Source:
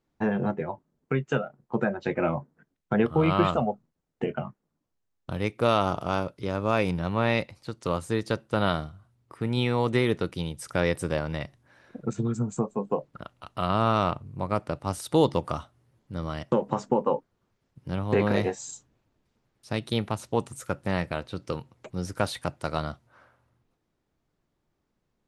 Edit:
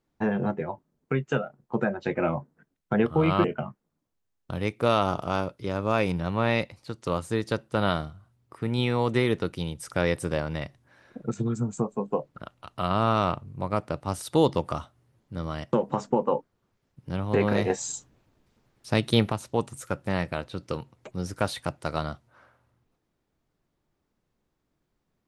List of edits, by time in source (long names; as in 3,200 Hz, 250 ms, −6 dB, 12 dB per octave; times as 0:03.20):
0:03.44–0:04.23: remove
0:18.49–0:20.11: clip gain +6 dB